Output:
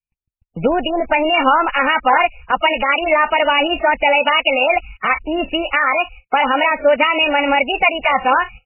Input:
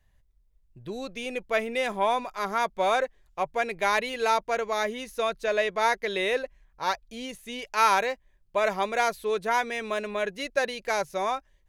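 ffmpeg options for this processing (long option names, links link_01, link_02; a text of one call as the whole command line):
ffmpeg -i in.wav -filter_complex "[0:a]agate=range=-55dB:threshold=-55dB:ratio=16:detection=peak,asetrate=59535,aresample=44100,bandreject=frequency=2700:width=20,acompressor=threshold=-33dB:ratio=2,aexciter=amount=4.1:drive=7.9:freq=2400,acrossover=split=2600[link_01][link_02];[link_02]acompressor=threshold=-32dB:ratio=4:attack=1:release=60[link_03];[link_01][link_03]amix=inputs=2:normalize=0,alimiter=level_in=24dB:limit=-1dB:release=50:level=0:latency=1,volume=-1dB" -ar 11025 -c:a libmp3lame -b:a 8k out.mp3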